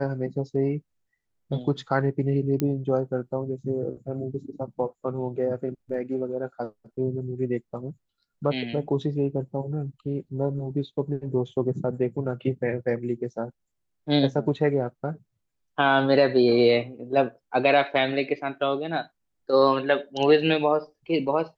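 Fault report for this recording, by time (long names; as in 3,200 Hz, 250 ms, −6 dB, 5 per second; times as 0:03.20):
0:02.60: click −12 dBFS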